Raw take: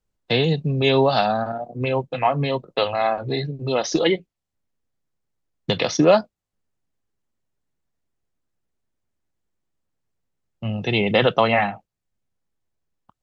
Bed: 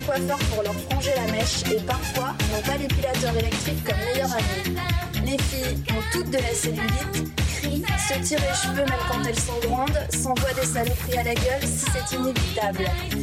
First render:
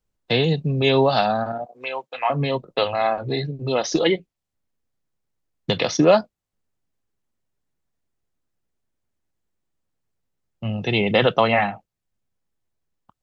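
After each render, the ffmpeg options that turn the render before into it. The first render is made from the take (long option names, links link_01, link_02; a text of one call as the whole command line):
ffmpeg -i in.wav -filter_complex "[0:a]asettb=1/sr,asplit=3[link_01][link_02][link_03];[link_01]atrim=end=1.664[link_04];[link_02]atrim=start=1.66:end=2.3,asetpts=PTS-STARTPTS,afade=type=in:duration=0.004:curve=qsin,afade=type=out:start_time=0.636:duration=0.004:curve=qsin,highpass=790[link_05];[link_03]atrim=start=2.296[link_06];[link_04][link_05]acrossfade=duration=0.004:curve1=hsin:curve2=qsin[link_07];[link_07][link_06]acrossfade=duration=0.004:curve1=qsin:curve2=hsin" out.wav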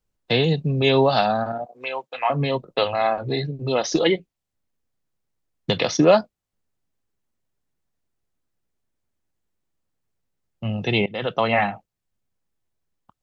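ffmpeg -i in.wav -filter_complex "[0:a]asplit=2[link_01][link_02];[link_01]atrim=end=11.06,asetpts=PTS-STARTPTS,afade=type=out:start_time=11.056:duration=0.004:curve=hsin:silence=0.0630957[link_03];[link_02]atrim=start=11.06,asetpts=PTS-STARTPTS,afade=type=in:duration=0.56:silence=0.0630957[link_04];[link_03][link_04]concat=n=2:v=0:a=1" out.wav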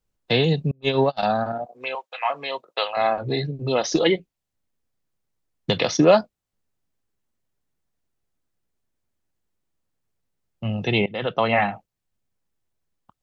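ffmpeg -i in.wav -filter_complex "[0:a]asettb=1/sr,asplit=3[link_01][link_02][link_03];[link_01]atrim=end=0.714[link_04];[link_02]atrim=start=0.71:end=1.23,asetpts=PTS-STARTPTS,afade=type=in:duration=0.004:curve=qsin,afade=type=out:start_time=0.516:duration=0.004:curve=qsin,agate=range=-35dB:threshold=-17dB:ratio=16:release=100:detection=peak[link_05];[link_03]atrim=start=1.226[link_06];[link_04][link_05]acrossfade=duration=0.004:curve1=hsin:curve2=qsin[link_07];[link_07][link_06]acrossfade=duration=0.004:curve1=qsin:curve2=hsin,asettb=1/sr,asplit=3[link_08][link_09][link_10];[link_08]atrim=end=1.954[link_11];[link_09]atrim=start=1.95:end=2.97,asetpts=PTS-STARTPTS,afade=type=in:duration=0.004:curve=qsin,afade=type=out:start_time=1.016:duration=0.004:curve=qsin,highpass=720[link_12];[link_10]atrim=start=2.966[link_13];[link_11][link_12]acrossfade=duration=0.004:curve1=hsin:curve2=qsin[link_14];[link_14][link_13]acrossfade=duration=0.004:curve1=qsin:curve2=hsin,asettb=1/sr,asplit=3[link_15][link_16][link_17];[link_15]atrim=end=10.874[link_18];[link_16]atrim=start=10.87:end=11.69,asetpts=PTS-STARTPTS,afade=type=in:duration=0.004:curve=qsin,afade=type=out:start_time=0.816:duration=0.004:curve=qsin,lowpass=4900[link_19];[link_17]atrim=start=11.686[link_20];[link_18][link_19]acrossfade=duration=0.004:curve1=hsin:curve2=qsin[link_21];[link_21][link_20]acrossfade=duration=0.004:curve1=qsin:curve2=hsin" out.wav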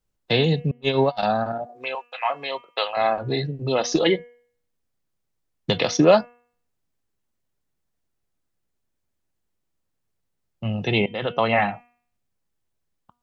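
ffmpeg -i in.wav -af "bandreject=frequency=241:width_type=h:width=4,bandreject=frequency=482:width_type=h:width=4,bandreject=frequency=723:width_type=h:width=4,bandreject=frequency=964:width_type=h:width=4,bandreject=frequency=1205:width_type=h:width=4,bandreject=frequency=1446:width_type=h:width=4,bandreject=frequency=1687:width_type=h:width=4,bandreject=frequency=1928:width_type=h:width=4,bandreject=frequency=2169:width_type=h:width=4,bandreject=frequency=2410:width_type=h:width=4,bandreject=frequency=2651:width_type=h:width=4,bandreject=frequency=2892:width_type=h:width=4,bandreject=frequency=3133:width_type=h:width=4" out.wav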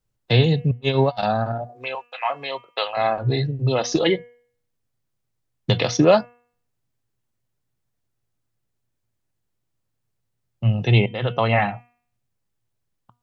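ffmpeg -i in.wav -af "equalizer=frequency=120:width_type=o:width=0.3:gain=13.5" out.wav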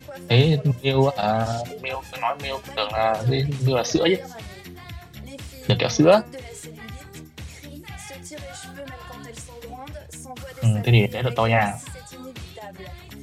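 ffmpeg -i in.wav -i bed.wav -filter_complex "[1:a]volume=-14dB[link_01];[0:a][link_01]amix=inputs=2:normalize=0" out.wav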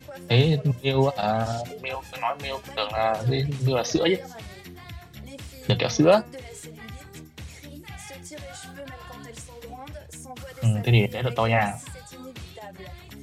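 ffmpeg -i in.wav -af "volume=-2.5dB" out.wav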